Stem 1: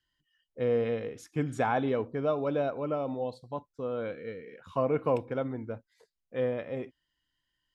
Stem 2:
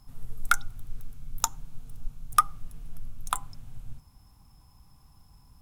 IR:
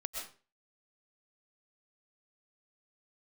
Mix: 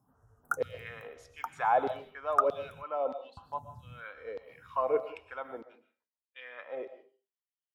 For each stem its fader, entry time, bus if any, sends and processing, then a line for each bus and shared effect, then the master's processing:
−5.5 dB, 0.00 s, send −5.5 dB, auto-filter high-pass saw down 1.6 Hz 430–4,400 Hz; noise gate −59 dBFS, range −26 dB
−5.5 dB, 0.00 s, muted 0:02.82–0:03.37, send −23.5 dB, automatic gain control gain up to 5.5 dB; elliptic band-stop filter 1,600–5,800 Hz; phaser with staggered stages 1 Hz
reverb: on, RT60 0.35 s, pre-delay 85 ms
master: high-pass filter 71 Hz 24 dB per octave; high-shelf EQ 3,700 Hz −9.5 dB

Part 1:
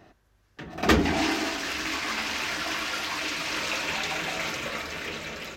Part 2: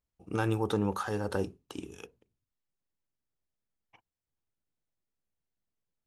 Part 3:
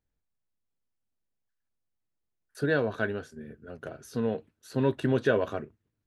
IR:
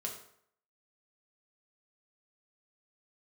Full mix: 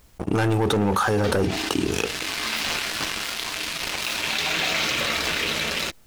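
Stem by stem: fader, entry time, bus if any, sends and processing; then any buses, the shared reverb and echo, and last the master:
−17.5 dB, 0.35 s, send −18.5 dB, parametric band 3,800 Hz +7.5 dB 1.3 octaves; automatic ducking −17 dB, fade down 1.40 s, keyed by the second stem
0.0 dB, 0.00 s, no send, no processing
−14.0 dB, 0.00 s, no send, Chebyshev high-pass filter 1,400 Hz, order 10; downward compressor, threshold −37 dBFS, peak gain reduction 9.5 dB; short delay modulated by noise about 1,200 Hz, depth 0.19 ms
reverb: on, RT60 0.65 s, pre-delay 4 ms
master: leveller curve on the samples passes 3; envelope flattener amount 70%

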